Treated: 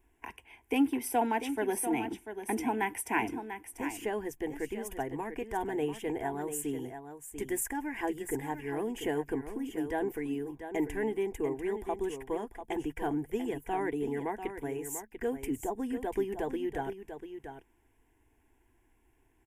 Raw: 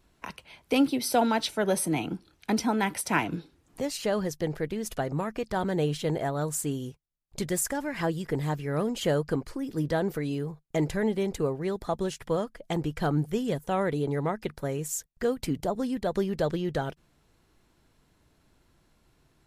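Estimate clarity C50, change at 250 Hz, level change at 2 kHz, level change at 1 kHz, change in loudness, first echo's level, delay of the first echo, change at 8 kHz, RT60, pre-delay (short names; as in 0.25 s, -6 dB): none, -4.5 dB, -3.5 dB, -3.0 dB, -5.0 dB, -9.5 dB, 0.692 s, -5.5 dB, none, none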